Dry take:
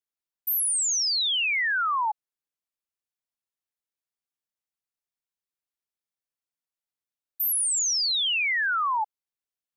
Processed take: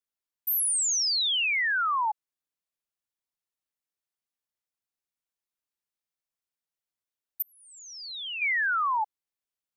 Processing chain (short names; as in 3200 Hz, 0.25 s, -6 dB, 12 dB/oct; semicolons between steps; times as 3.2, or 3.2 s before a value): 7.42–8.42 tape spacing loss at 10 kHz 31 dB; gain -1 dB